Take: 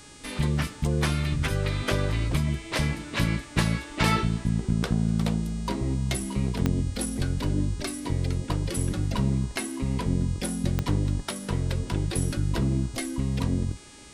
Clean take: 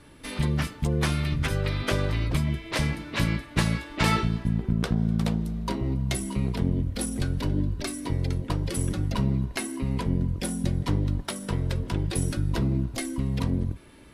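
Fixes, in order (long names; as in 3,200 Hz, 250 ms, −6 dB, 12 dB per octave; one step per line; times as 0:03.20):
click removal
hum removal 414.4 Hz, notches 23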